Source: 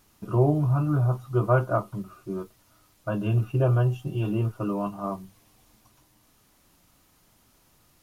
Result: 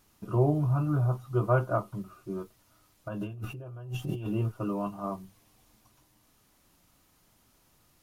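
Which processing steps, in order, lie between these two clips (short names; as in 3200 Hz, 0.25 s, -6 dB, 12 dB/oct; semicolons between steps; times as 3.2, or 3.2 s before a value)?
3.08–4.26 negative-ratio compressor -34 dBFS, ratio -1; gain -3.5 dB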